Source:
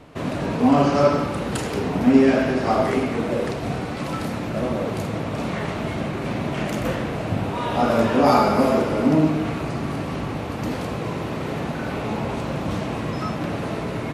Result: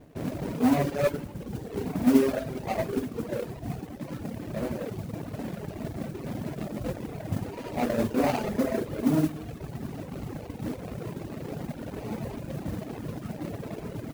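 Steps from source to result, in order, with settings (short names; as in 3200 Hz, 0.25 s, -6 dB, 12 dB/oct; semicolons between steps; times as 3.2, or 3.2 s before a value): median filter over 41 samples; reverb removal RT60 1.9 s; modulation noise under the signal 22 dB; gain -4 dB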